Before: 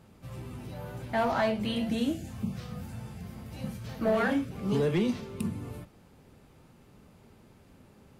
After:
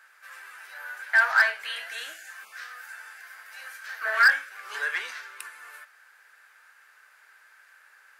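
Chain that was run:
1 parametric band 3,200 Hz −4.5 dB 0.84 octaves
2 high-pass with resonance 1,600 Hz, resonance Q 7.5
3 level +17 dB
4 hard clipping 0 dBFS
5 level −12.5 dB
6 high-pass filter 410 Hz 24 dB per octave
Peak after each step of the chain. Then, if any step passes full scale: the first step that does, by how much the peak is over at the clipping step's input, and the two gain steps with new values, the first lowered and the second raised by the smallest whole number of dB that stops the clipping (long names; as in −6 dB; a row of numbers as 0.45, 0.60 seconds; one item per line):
−18.5, −8.5, +8.5, 0.0, −12.5, −8.5 dBFS
step 3, 8.5 dB
step 3 +8 dB, step 5 −3.5 dB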